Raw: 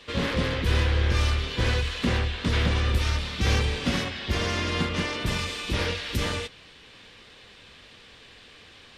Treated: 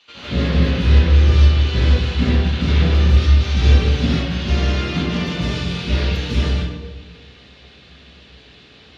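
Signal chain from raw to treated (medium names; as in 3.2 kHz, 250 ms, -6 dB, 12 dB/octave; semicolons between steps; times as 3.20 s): treble shelf 2.5 kHz +10 dB; reverberation RT60 1.3 s, pre-delay 147 ms, DRR -11 dB; trim -17.5 dB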